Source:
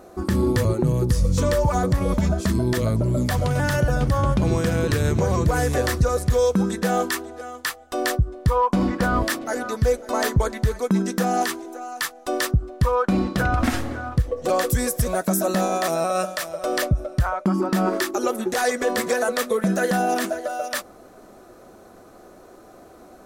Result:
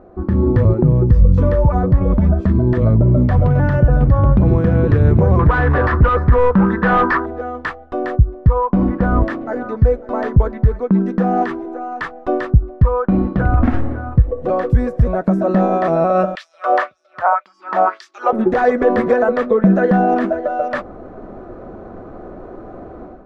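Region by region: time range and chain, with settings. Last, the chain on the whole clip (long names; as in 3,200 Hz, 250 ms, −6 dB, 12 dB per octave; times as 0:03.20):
0:05.39–0:07.26: low-pass filter 5,600 Hz 24 dB per octave + flat-topped bell 1,300 Hz +13.5 dB 1.3 octaves + hard clipping −16.5 dBFS
0:16.35–0:18.33: low-shelf EQ 120 Hz −7 dB + auto-filter high-pass sine 1.9 Hz 670–5,900 Hz
whole clip: low-pass filter 1,700 Hz 12 dB per octave; spectral tilt −2 dB per octave; automatic gain control; level −1 dB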